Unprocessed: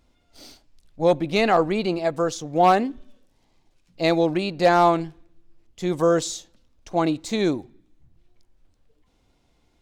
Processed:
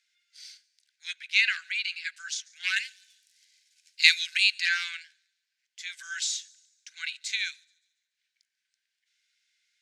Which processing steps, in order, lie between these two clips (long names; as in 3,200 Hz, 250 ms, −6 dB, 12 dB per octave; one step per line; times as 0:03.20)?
Chebyshev high-pass with heavy ripple 1,500 Hz, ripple 3 dB
delay with a high-pass on its return 142 ms, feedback 44%, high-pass 4,600 Hz, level −22 dB
dynamic equaliser 2,700 Hz, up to +7 dB, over −48 dBFS, Q 1.9
low-pass filter 8,700 Hz 12 dB per octave
0:02.76–0:04.60: spectral tilt +4.5 dB per octave
level +1.5 dB